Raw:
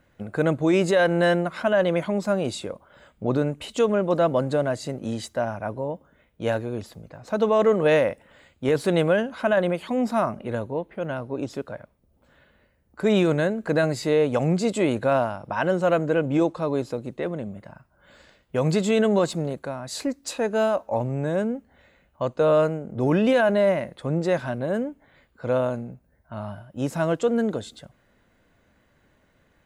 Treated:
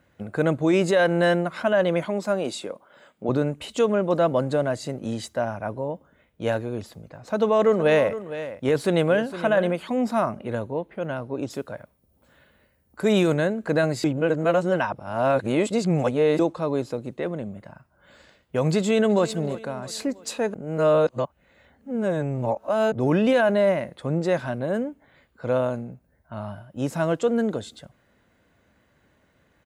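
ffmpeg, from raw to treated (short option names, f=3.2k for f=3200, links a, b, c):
-filter_complex "[0:a]asettb=1/sr,asplit=3[a][b][c];[a]atrim=end=2.054[d];[b]atrim=start=2.05:end=3.29,asetpts=PTS-STARTPTS,afade=t=in:d=0.004:c=qsin,afade=t=out:st=1.236:d=0.004:c=qsin,highpass=220[e];[c]atrim=start=3.286[f];[d][e]acrossfade=d=0.004:c1=hsin:c2=qsin[g];[g][f]acrossfade=d=0.004:c1=qsin:c2=hsin,asettb=1/sr,asplit=3[h][i][j];[h]atrim=end=7.104[k];[i]atrim=start=7.1:end=9.83,asetpts=PTS-STARTPTS,afade=t=in:d=0.004:c=qsin,afade=t=out:st=2.726:d=0.004:c=qsin,aecho=1:1:462:0.224,atrim=end_sample=120393[l];[j]atrim=start=9.826[m];[k][l]acrossfade=d=0.004:c1=hsin:c2=qsin[n];[n][m]acrossfade=d=0.004:c1=qsin:c2=hsin,asettb=1/sr,asplit=3[o][p][q];[o]atrim=end=11.504[r];[p]atrim=start=11.5:end=13.34,asetpts=PTS-STARTPTS,afade=t=in:d=0.004:c=qsin,afade=t=out:st=1.836:d=0.004:c=qsin,highshelf=f=7.6k:g=10.5[s];[q]atrim=start=13.336[t];[r][s]acrossfade=d=0.004:c1=hsin:c2=qsin[u];[u][t]acrossfade=d=0.004:c1=qsin:c2=hsin,asplit=2[v][w];[w]afade=t=in:st=18.76:d=0.01,afade=t=out:st=19.25:d=0.01,aecho=0:1:330|660|990|1320:0.158489|0.0792447|0.0396223|0.0198112[x];[v][x]amix=inputs=2:normalize=0,asplit=5[y][z][aa][ab][ac];[y]atrim=end=14.042[ad];[z]atrim=start=14.038:end=16.392,asetpts=PTS-STARTPTS,areverse[ae];[aa]atrim=start=16.388:end=20.542[af];[ab]atrim=start=20.538:end=22.922,asetpts=PTS-STARTPTS,areverse[ag];[ac]atrim=start=22.918[ah];[ad][ae]acrossfade=d=0.004:c1=hsin:c2=hsin[ai];[ai][af]acrossfade=d=0.004:c1=hsin:c2=hsin[aj];[aj][ag]acrossfade=d=0.004:c1=hsin:c2=hsin[ak];[ak][ah]acrossfade=d=0.004:c1=hsin:c2=hsin,highpass=49"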